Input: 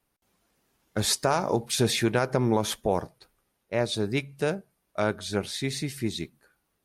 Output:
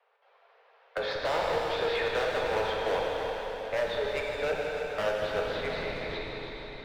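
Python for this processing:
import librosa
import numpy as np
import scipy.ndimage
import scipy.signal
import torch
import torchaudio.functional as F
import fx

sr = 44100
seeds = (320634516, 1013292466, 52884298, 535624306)

p1 = scipy.signal.sosfilt(scipy.signal.butter(16, 430.0, 'highpass', fs=sr, output='sos'), x)
p2 = fx.schmitt(p1, sr, flips_db=-33.0)
p3 = p1 + (p2 * 10.0 ** (-10.0 / 20.0))
p4 = scipy.ndimage.gaussian_filter1d(p3, 3.1, mode='constant')
p5 = np.clip(p4, -10.0 ** (-28.5 / 20.0), 10.0 ** (-28.5 / 20.0))
p6 = p5 + fx.echo_heads(p5, sr, ms=156, heads='first and second', feedback_pct=41, wet_db=-12.0, dry=0)
p7 = fx.rev_plate(p6, sr, seeds[0], rt60_s=3.1, hf_ratio=1.0, predelay_ms=0, drr_db=-1.5)
y = fx.band_squash(p7, sr, depth_pct=40)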